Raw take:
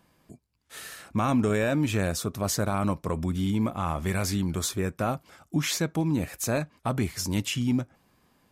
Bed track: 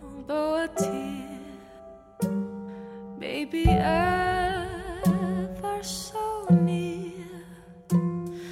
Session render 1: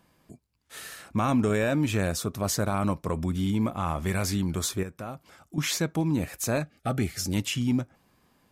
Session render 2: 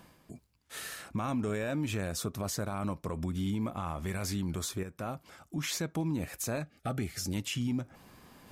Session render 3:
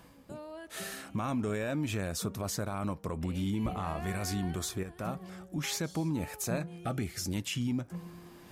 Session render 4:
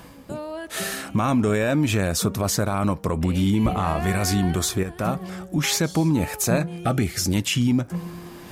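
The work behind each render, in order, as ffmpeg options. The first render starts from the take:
-filter_complex "[0:a]asettb=1/sr,asplit=3[s0][s1][s2];[s0]atrim=end=4.834[s3];[s1]atrim=start=4.83:end=5.58,asetpts=PTS-STARTPTS,afade=t=in:d=0.004:c=qsin,afade=t=out:st=0.746:d=0.004:c=qsin,acompressor=threshold=0.00316:ratio=1.5:attack=3.2:release=140:knee=1:detection=peak[s4];[s2]atrim=start=5.576[s5];[s3][s4]acrossfade=d=0.004:c1=hsin:c2=qsin[s6];[s6][s5]acrossfade=d=0.004:c1=qsin:c2=hsin,asettb=1/sr,asplit=3[s7][s8][s9];[s7]atrim=end=6.634[s10];[s8]atrim=start=6.63:end=7.34,asetpts=PTS-STARTPTS,afade=t=in:d=0.004:c=qsin,afade=t=out:st=0.706:d=0.004:c=qsin,asuperstop=centerf=1000:order=20:qfactor=3.5[s11];[s9]atrim=start=7.336[s12];[s10][s11]acrossfade=d=0.004:c1=hsin:c2=qsin[s13];[s13][s12]acrossfade=d=0.004:c1=qsin:c2=hsin"
-af "areverse,acompressor=mode=upward:threshold=0.00562:ratio=2.5,areverse,alimiter=level_in=1.12:limit=0.0631:level=0:latency=1:release=232,volume=0.891"
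-filter_complex "[1:a]volume=0.112[s0];[0:a][s0]amix=inputs=2:normalize=0"
-af "volume=3.98"

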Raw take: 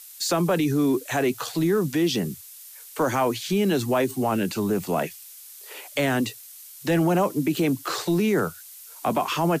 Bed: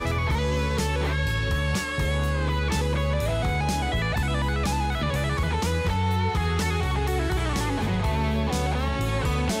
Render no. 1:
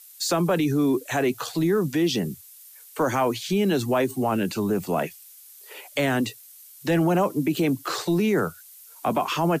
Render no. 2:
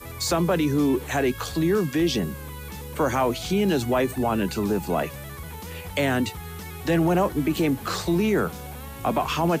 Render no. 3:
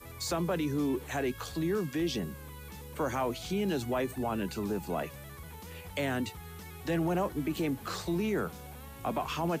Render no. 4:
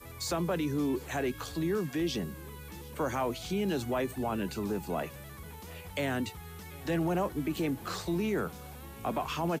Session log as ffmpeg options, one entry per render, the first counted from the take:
-af "afftdn=nr=6:nf=-45"
-filter_complex "[1:a]volume=0.237[s0];[0:a][s0]amix=inputs=2:normalize=0"
-af "volume=0.355"
-af "aecho=1:1:746:0.0668"

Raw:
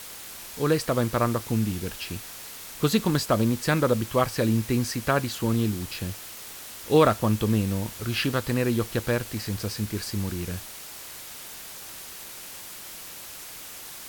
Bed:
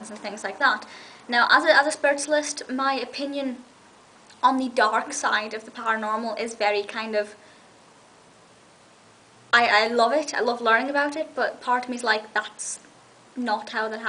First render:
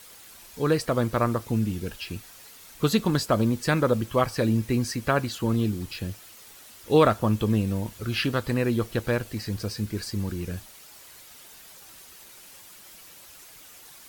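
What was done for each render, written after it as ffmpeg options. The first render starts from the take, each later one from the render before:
-af "afftdn=nr=9:nf=-41"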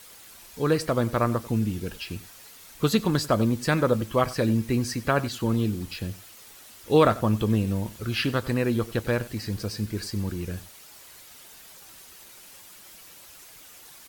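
-filter_complex "[0:a]asplit=2[s0][s1];[s1]adelay=93.29,volume=0.126,highshelf=f=4000:g=-2.1[s2];[s0][s2]amix=inputs=2:normalize=0"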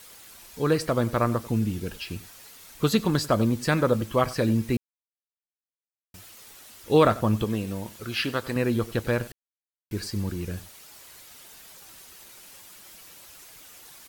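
-filter_complex "[0:a]asettb=1/sr,asplit=3[s0][s1][s2];[s0]atrim=end=7.444[s3];[s1]atrim=start=7.44:end=8.56,asetpts=PTS-STARTPTS,afade=t=in:d=0.004:c=qsin,afade=t=out:st=1.116:d=0.004:c=qsin,lowshelf=f=190:g=-10.5[s4];[s2]atrim=start=8.556[s5];[s3][s4]acrossfade=d=0.004:c1=hsin:c2=qsin[s6];[s6][s5]acrossfade=d=0.004:c1=qsin:c2=hsin,asplit=5[s7][s8][s9][s10][s11];[s7]atrim=end=4.77,asetpts=PTS-STARTPTS,afade=t=out:st=4.766:d=0.004:c=hsin[s12];[s8]atrim=start=4.77:end=6.14,asetpts=PTS-STARTPTS,volume=0[s13];[s9]atrim=start=6.14:end=9.32,asetpts=PTS-STARTPTS,afade=t=in:d=0.004:c=hsin,afade=t=out:st=3.176:d=0.004:c=hsin[s14];[s10]atrim=start=9.32:end=9.91,asetpts=PTS-STARTPTS,volume=0[s15];[s11]atrim=start=9.91,asetpts=PTS-STARTPTS,afade=t=in:d=0.004:c=hsin[s16];[s12][s13][s14][s15][s16]concat=n=5:v=0:a=1"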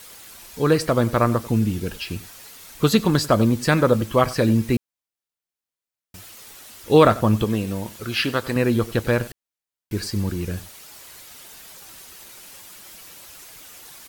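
-af "volume=1.78"

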